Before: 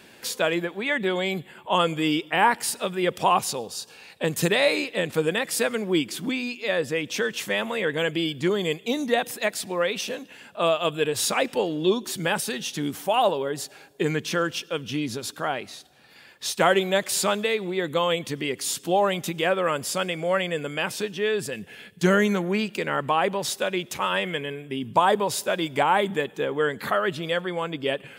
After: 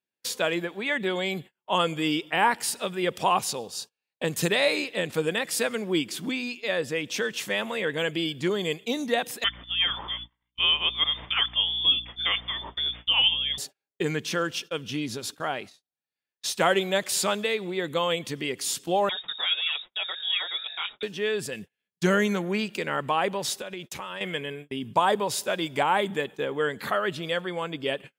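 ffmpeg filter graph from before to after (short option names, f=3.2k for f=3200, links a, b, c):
-filter_complex "[0:a]asettb=1/sr,asplit=3[a][b][c];[a]atrim=end=9.444[d];[b]atrim=start=9.44:end=13.58,asetpts=PTS-STARTPTS,afade=t=in:d=0.004:c=qsin,afade=t=out:st=4.136:d=0.004:c=qsin,lowpass=f=3.1k:t=q:w=0.5098,lowpass=f=3.1k:t=q:w=0.6013,lowpass=f=3.1k:t=q:w=0.9,lowpass=f=3.1k:t=q:w=2.563,afreqshift=-3700,aeval=exprs='val(0)+0.00708*(sin(2*PI*60*n/s)+sin(2*PI*2*60*n/s)/2+sin(2*PI*3*60*n/s)/3+sin(2*PI*4*60*n/s)/4+sin(2*PI*5*60*n/s)/5)':c=same[e];[c]atrim=start=13.576[f];[d][e]acrossfade=d=0.004:c1=hsin:c2=qsin[g];[g][f]acrossfade=d=0.004:c1=qsin:c2=hsin,asettb=1/sr,asplit=3[h][i][j];[h]atrim=end=19.094[k];[i]atrim=start=19.09:end=21.03,asetpts=PTS-STARTPTS,afade=t=in:d=0.004:c=qsin,afade=t=out:st=1.936:d=0.004:c=qsin,lowpass=f=3.3k:t=q:w=0.5098,lowpass=f=3.3k:t=q:w=0.6013,lowpass=f=3.3k:t=q:w=0.9,lowpass=f=3.3k:t=q:w=2.563,afreqshift=-3900,flanger=delay=4.7:depth=4:regen=-19:speed=1.1:shape=sinusoidal[l];[j]atrim=start=21.026[m];[k][l]acrossfade=d=0.004:c1=hsin:c2=qsin[n];[n][m]acrossfade=d=0.004:c1=qsin:c2=hsin,asettb=1/sr,asplit=3[o][p][q];[o]atrim=end=23.614[r];[p]atrim=start=23.61:end=24.21,asetpts=PTS-STARTPTS,afade=t=in:d=0.004:c=qsin,afade=t=out:st=0.596:d=0.004:c=qsin,lowshelf=f=160:g=2.5,acompressor=threshold=-29dB:ratio=10:attack=3.2:release=140:knee=1:detection=peak[s];[q]atrim=start=24.206[t];[r][s]acrossfade=d=0.004:c1=hsin:c2=qsin[u];[u][t]acrossfade=d=0.004:c1=qsin:c2=hsin,agate=range=-41dB:threshold=-37dB:ratio=16:detection=peak,equalizer=f=4.8k:t=o:w=2.3:g=2.5,volume=-3dB"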